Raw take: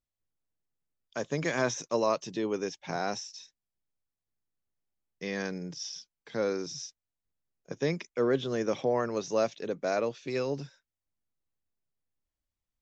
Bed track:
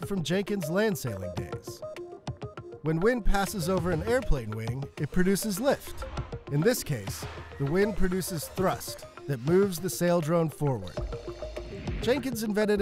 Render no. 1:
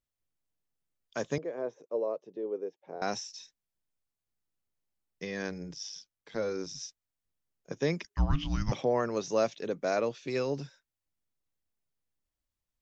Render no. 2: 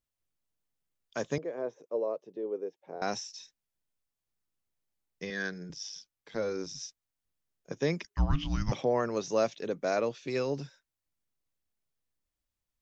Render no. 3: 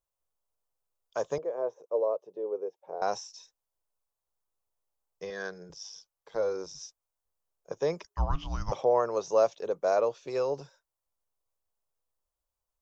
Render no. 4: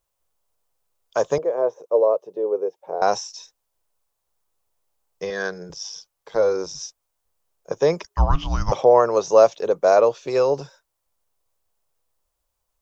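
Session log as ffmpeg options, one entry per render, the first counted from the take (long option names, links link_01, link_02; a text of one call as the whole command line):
ffmpeg -i in.wav -filter_complex "[0:a]asettb=1/sr,asplit=3[link_01][link_02][link_03];[link_01]atrim=end=1.384[link_04];[link_02]atrim=start=1.38:end=3.02,asetpts=PTS-STARTPTS,afade=type=in:duration=0.004:curve=qsin,afade=type=out:start_time=1.636:duration=0.004:curve=qsin,bandpass=frequency=470:width_type=q:width=3.2[link_05];[link_03]atrim=start=3.016[link_06];[link_04][link_05]acrossfade=duration=0.004:curve1=hsin:curve2=qsin[link_07];[link_07][link_06]acrossfade=duration=0.004:curve1=qsin:curve2=hsin,asplit=3[link_08][link_09][link_10];[link_08]afade=type=out:start_time=5.24:duration=0.02[link_11];[link_09]tremolo=f=100:d=0.571,afade=type=in:start_time=5.24:duration=0.02,afade=type=out:start_time=6.8:duration=0.02[link_12];[link_10]afade=type=in:start_time=6.8:duration=0.02[link_13];[link_11][link_12][link_13]amix=inputs=3:normalize=0,asettb=1/sr,asplit=3[link_14][link_15][link_16];[link_14]atrim=end=8.044[link_17];[link_15]atrim=start=8.04:end=8.72,asetpts=PTS-STARTPTS,afade=type=in:duration=0.004:curve=qsin,afade=type=out:start_time=0.676:duration=0.004:curve=qsin,afreqshift=-420[link_18];[link_16]atrim=start=8.716[link_19];[link_17][link_18]acrossfade=duration=0.004:curve1=hsin:curve2=qsin[link_20];[link_20][link_19]acrossfade=duration=0.004:curve1=qsin:curve2=hsin" out.wav
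ffmpeg -i in.wav -filter_complex "[0:a]asettb=1/sr,asplit=3[link_01][link_02][link_03];[link_01]atrim=end=5.304[link_04];[link_02]atrim=start=5.3:end=5.7,asetpts=PTS-STARTPTS,afade=type=in:duration=0.004:curve=qsin,afade=type=out:start_time=0.396:duration=0.004:curve=qsin,highpass=frequency=130:width=0.5412,highpass=frequency=130:width=1.3066,equalizer=frequency=260:width_type=q:width=4:gain=-7,equalizer=frequency=550:width_type=q:width=4:gain=-6,equalizer=frequency=890:width_type=q:width=4:gain=-9,equalizer=frequency=1600:width_type=q:width=4:gain=9,equalizer=frequency=2500:width_type=q:width=4:gain=-8,equalizer=frequency=3600:width_type=q:width=4:gain=8,lowpass=frequency=6700:width=0.5412,lowpass=frequency=6700:width=1.3066[link_05];[link_03]atrim=start=5.696[link_06];[link_04][link_05]acrossfade=duration=0.004:curve1=hsin:curve2=qsin[link_07];[link_07][link_06]acrossfade=duration=0.004:curve1=qsin:curve2=hsin" out.wav
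ffmpeg -i in.wav -af "equalizer=frequency=125:width_type=o:width=1:gain=-5,equalizer=frequency=250:width_type=o:width=1:gain=-12,equalizer=frequency=500:width_type=o:width=1:gain=6,equalizer=frequency=1000:width_type=o:width=1:gain=7,equalizer=frequency=2000:width_type=o:width=1:gain=-9,equalizer=frequency=4000:width_type=o:width=1:gain=-4" out.wav
ffmpeg -i in.wav -af "volume=10.5dB" out.wav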